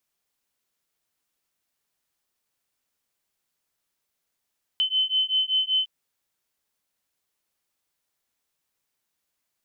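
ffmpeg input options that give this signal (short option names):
-f lavfi -i "aevalsrc='0.0631*(sin(2*PI*3050*t)+sin(2*PI*3055.2*t))':d=1.06:s=44100"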